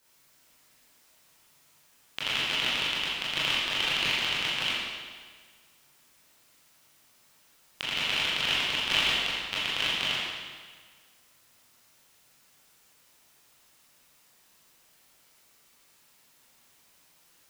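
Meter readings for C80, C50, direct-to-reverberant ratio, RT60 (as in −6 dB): 0.0 dB, −3.0 dB, −9.0 dB, 1.6 s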